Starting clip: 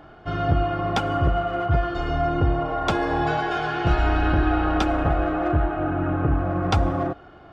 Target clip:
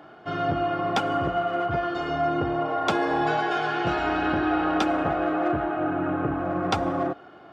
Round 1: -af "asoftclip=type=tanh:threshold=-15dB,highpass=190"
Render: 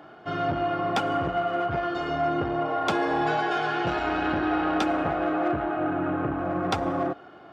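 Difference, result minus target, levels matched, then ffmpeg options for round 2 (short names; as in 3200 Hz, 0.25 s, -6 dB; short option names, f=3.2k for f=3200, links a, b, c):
soft clip: distortion +12 dB
-af "asoftclip=type=tanh:threshold=-7.5dB,highpass=190"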